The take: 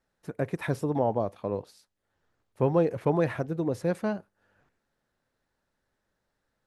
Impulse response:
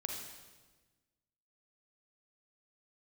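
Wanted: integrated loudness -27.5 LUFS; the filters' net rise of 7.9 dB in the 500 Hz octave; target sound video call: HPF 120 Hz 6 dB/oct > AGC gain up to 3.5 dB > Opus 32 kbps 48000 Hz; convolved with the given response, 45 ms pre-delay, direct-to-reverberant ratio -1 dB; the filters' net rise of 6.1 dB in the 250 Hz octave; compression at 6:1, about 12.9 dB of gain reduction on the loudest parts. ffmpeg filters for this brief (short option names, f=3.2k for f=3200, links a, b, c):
-filter_complex "[0:a]equalizer=f=250:t=o:g=7,equalizer=f=500:t=o:g=7.5,acompressor=threshold=-26dB:ratio=6,asplit=2[a][b];[1:a]atrim=start_sample=2205,adelay=45[c];[b][c]afir=irnorm=-1:irlink=0,volume=0.5dB[d];[a][d]amix=inputs=2:normalize=0,highpass=f=120:p=1,dynaudnorm=m=3.5dB,volume=1.5dB" -ar 48000 -c:a libopus -b:a 32k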